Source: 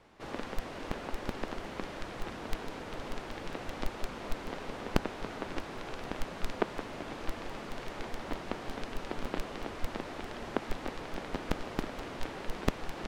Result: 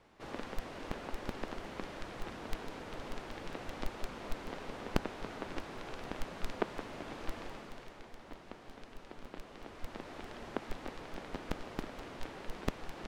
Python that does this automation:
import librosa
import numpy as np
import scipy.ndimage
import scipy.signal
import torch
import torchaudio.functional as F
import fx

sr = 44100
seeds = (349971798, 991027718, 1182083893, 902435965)

y = fx.gain(x, sr, db=fx.line((7.42, -3.5), (8.04, -12.5), (9.33, -12.5), (10.17, -5.5)))